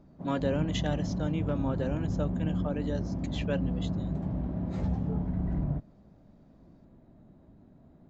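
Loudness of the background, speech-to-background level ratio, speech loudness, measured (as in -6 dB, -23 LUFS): -33.0 LUFS, -2.0 dB, -35.0 LUFS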